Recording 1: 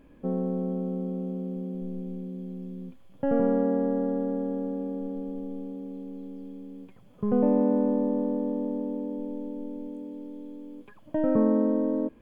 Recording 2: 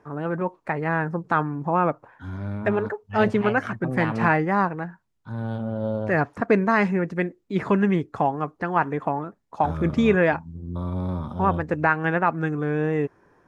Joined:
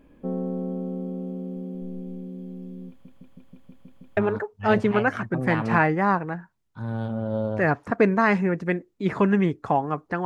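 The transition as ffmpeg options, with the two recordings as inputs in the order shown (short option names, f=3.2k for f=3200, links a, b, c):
-filter_complex "[0:a]apad=whole_dur=10.25,atrim=end=10.25,asplit=8[a][b][c][d][e][f][g][h];[a]atrim=end=3.052[i];[b]atrim=start=2.888:end=3.052[j];[c]atrim=start=2.888:end=3.052[k];[d]atrim=start=2.888:end=3.052[l];[e]atrim=start=2.888:end=3.052[m];[f]atrim=start=2.888:end=3.052[n];[g]atrim=start=2.888:end=3.052[o];[h]atrim=start=2.888:end=3.052[p];[1:a]atrim=start=2.668:end=8.75[q];[i][j]acrossfade=d=0.004:c1=hsin:c2=hsin[r];[r][k]acrossfade=d=0.004:c1=hsin:c2=hsin[s];[s][l]acrossfade=d=0.004:c1=hsin:c2=hsin[t];[t][m]acrossfade=d=0.004:c1=hsin:c2=hsin[u];[u][n]acrossfade=d=0.004:c1=hsin:c2=hsin[v];[v][o]acrossfade=d=0.004:c1=hsin:c2=hsin[w];[w][p]acrossfade=d=0.004:c1=hsin:c2=hsin[x];[x][q]acrossfade=d=0.004:c1=hsin:c2=hsin"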